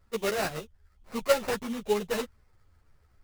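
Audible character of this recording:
aliases and images of a low sample rate 3,300 Hz, jitter 20%
a shimmering, thickened sound

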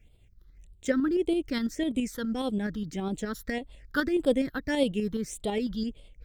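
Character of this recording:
phaser sweep stages 6, 1.7 Hz, lowest notch 640–1,700 Hz
tremolo saw up 12 Hz, depth 45%

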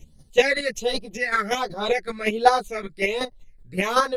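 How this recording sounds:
phaser sweep stages 8, 1.3 Hz, lowest notch 800–2,400 Hz
chopped level 5.3 Hz, depth 65%, duty 15%
a shimmering, thickened sound

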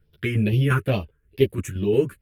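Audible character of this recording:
phaser sweep stages 4, 2.3 Hz, lowest notch 700–1,400 Hz
tremolo saw down 5.7 Hz, depth 55%
a shimmering, thickened sound

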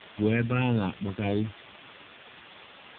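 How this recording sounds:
phaser sweep stages 6, 1.6 Hz, lowest notch 790–2,000 Hz
a quantiser's noise floor 6 bits, dither triangular
AMR narrowband

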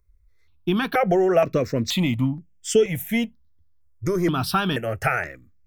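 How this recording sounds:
notches that jump at a steady rate 2.1 Hz 800–4,000 Hz

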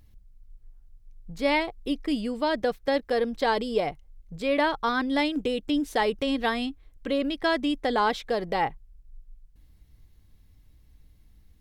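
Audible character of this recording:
background noise floor −58 dBFS
spectral slope −2.0 dB per octave

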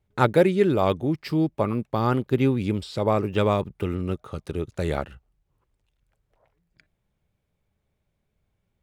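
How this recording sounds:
background noise floor −77 dBFS
spectral slope −5.5 dB per octave

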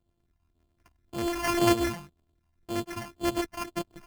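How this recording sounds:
a buzz of ramps at a fixed pitch in blocks of 128 samples
phaser sweep stages 8, 1.9 Hz, lowest notch 420–3,900 Hz
aliases and images of a low sample rate 3,800 Hz, jitter 0%

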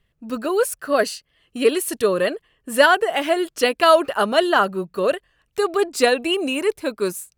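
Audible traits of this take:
background noise floor −70 dBFS
spectral slope −3.0 dB per octave

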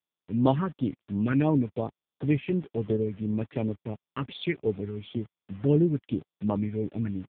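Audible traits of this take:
phaser sweep stages 4, 2.8 Hz, lowest notch 680–2,100 Hz
a quantiser's noise floor 8 bits, dither none
AMR narrowband

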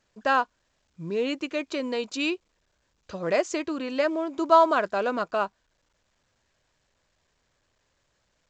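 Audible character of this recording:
A-law companding

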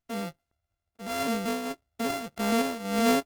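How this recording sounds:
a buzz of ramps at a fixed pitch in blocks of 64 samples
tremolo triangle 1.7 Hz, depth 75%
Opus

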